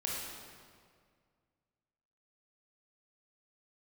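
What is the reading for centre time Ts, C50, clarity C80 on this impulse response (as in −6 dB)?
109 ms, −1.5 dB, 1.0 dB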